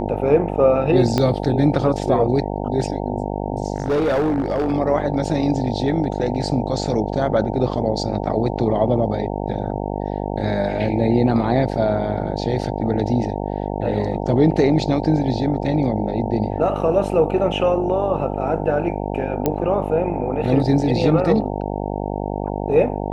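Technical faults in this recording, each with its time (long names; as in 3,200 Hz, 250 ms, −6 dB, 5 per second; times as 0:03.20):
mains buzz 50 Hz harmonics 18 −25 dBFS
0:01.18: click −6 dBFS
0:03.76–0:04.73: clipping −15.5 dBFS
0:19.46: click −6 dBFS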